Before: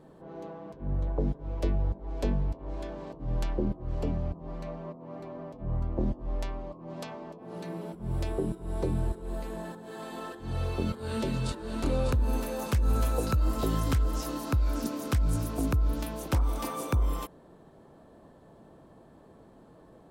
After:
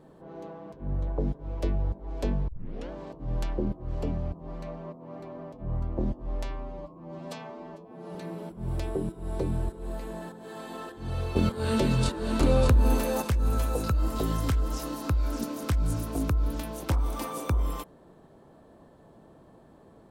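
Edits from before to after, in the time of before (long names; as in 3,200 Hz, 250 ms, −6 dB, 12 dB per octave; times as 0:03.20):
0:02.48: tape start 0.43 s
0:06.44–0:07.58: time-stretch 1.5×
0:10.79–0:12.65: clip gain +6 dB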